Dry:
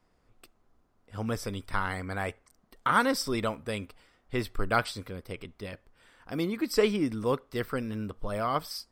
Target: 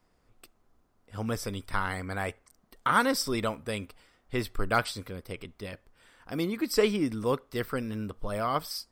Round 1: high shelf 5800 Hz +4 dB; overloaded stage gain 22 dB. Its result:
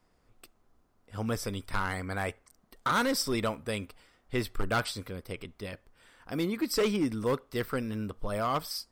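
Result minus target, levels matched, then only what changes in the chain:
overloaded stage: distortion +31 dB
change: overloaded stage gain 11.5 dB

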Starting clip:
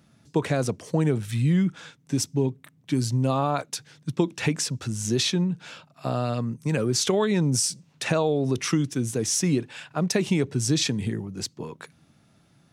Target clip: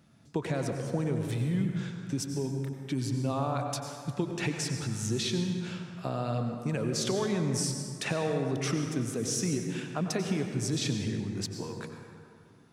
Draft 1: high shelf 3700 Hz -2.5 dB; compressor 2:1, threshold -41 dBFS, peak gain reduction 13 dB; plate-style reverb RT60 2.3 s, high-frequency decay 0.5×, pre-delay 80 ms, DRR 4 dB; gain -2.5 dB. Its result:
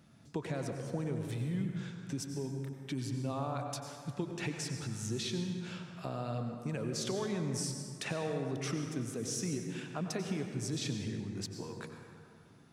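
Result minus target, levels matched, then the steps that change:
compressor: peak gain reduction +6 dB
change: compressor 2:1, threshold -29 dBFS, peak gain reduction 7 dB

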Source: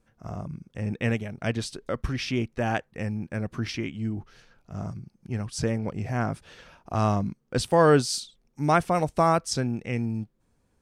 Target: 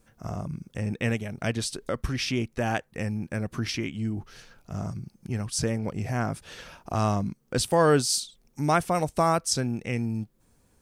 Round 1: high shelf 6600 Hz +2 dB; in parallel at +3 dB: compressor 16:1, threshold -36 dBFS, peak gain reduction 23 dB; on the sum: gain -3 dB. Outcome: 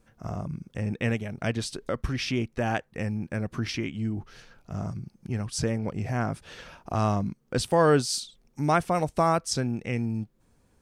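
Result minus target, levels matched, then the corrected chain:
8000 Hz band -4.0 dB
high shelf 6600 Hz +11 dB; in parallel at +3 dB: compressor 16:1, threshold -36 dBFS, peak gain reduction 23 dB; on the sum: gain -3 dB

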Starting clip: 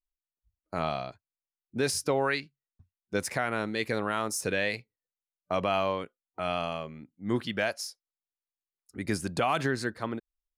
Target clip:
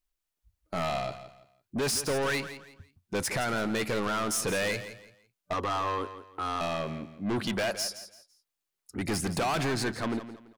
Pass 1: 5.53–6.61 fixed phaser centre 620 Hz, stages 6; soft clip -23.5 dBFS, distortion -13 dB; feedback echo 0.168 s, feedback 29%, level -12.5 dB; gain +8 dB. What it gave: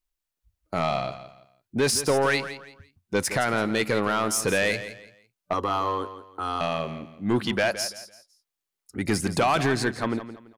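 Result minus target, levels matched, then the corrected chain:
soft clip: distortion -8 dB
5.53–6.61 fixed phaser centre 620 Hz, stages 6; soft clip -34 dBFS, distortion -5 dB; feedback echo 0.168 s, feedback 29%, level -12.5 dB; gain +8 dB

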